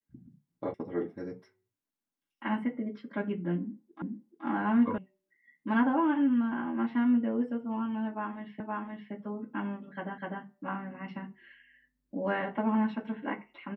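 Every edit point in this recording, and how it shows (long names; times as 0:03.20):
0:00.74: cut off before it has died away
0:04.02: the same again, the last 0.43 s
0:04.98: cut off before it has died away
0:08.60: the same again, the last 0.52 s
0:10.18: the same again, the last 0.25 s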